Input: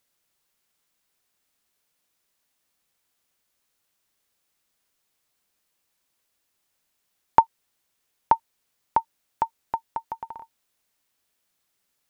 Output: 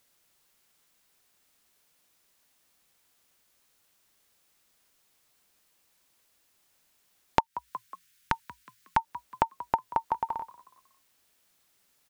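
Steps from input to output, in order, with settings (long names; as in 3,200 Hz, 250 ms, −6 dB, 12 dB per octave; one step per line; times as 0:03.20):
0:07.40–0:08.97: drawn EQ curve 150 Hz 0 dB, 770 Hz −21 dB, 1,500 Hz +3 dB
on a send: echo with shifted repeats 183 ms, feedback 42%, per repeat +57 Hz, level −20.5 dB
on the sum: downward compressor 8 to 1, threshold −27 dBFS, peak gain reduction 17 dB
level +6 dB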